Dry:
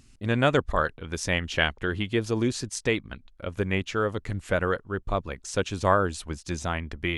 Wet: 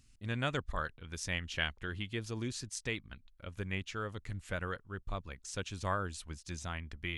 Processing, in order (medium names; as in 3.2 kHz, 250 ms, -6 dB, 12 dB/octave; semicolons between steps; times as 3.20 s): peaking EQ 480 Hz -8.5 dB 2.7 oct; trim -7.5 dB